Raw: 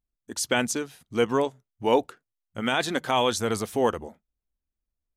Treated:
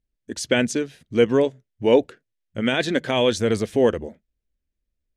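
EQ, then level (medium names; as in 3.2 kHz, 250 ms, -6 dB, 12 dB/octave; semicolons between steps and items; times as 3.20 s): low-pass 9.6 kHz 12 dB/octave; high-order bell 1 kHz -10.5 dB 1.1 oct; treble shelf 4.2 kHz -10 dB; +6.5 dB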